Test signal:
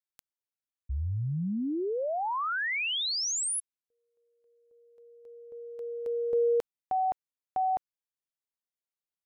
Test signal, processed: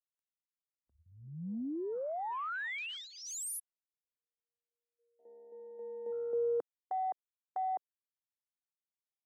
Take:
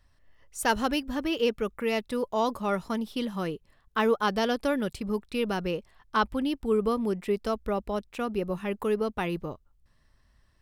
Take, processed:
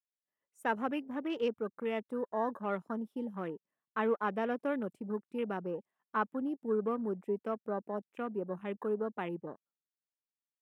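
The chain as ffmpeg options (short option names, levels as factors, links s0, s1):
-af "agate=range=0.158:threshold=0.00158:ratio=16:release=383:detection=peak,highpass=f=180:w=0.5412,highpass=f=180:w=1.3066,equalizer=f=4300:t=o:w=0.8:g=-13,afwtdn=0.01,volume=0.473"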